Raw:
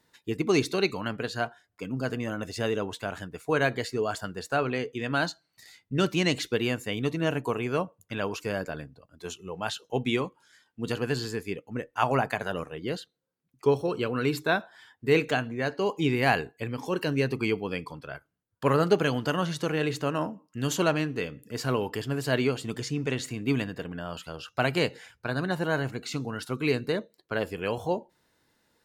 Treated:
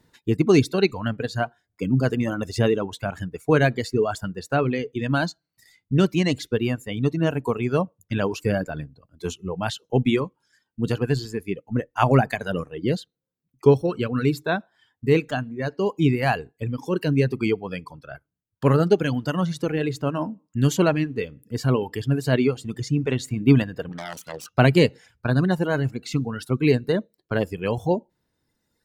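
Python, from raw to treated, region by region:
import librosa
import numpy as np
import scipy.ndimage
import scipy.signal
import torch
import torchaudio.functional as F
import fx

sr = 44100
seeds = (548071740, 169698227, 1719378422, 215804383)

y = fx.chain(x, sr, fx.self_delay(depth_ms=0.56),
    fx.highpass(hz=140.0, slope=12), at=(23.89, 24.52))
y = fx.dereverb_blind(y, sr, rt60_s=1.9)
y = fx.low_shelf(y, sr, hz=360.0, db=12.0)
y = fx.rider(y, sr, range_db=10, speed_s=2.0)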